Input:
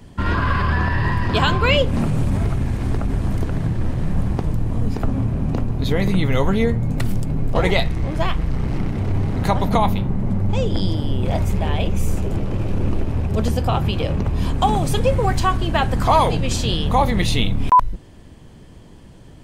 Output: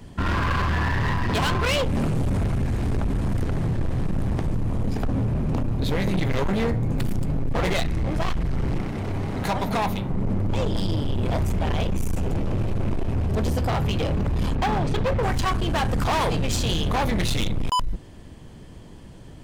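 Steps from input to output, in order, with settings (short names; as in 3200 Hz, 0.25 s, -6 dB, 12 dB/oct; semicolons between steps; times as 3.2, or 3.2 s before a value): 8.8–10.11 low shelf 210 Hz -9.5 dB; 14.55–15.23 LPF 3400 Hz 12 dB/oct; hard clip -20 dBFS, distortion -8 dB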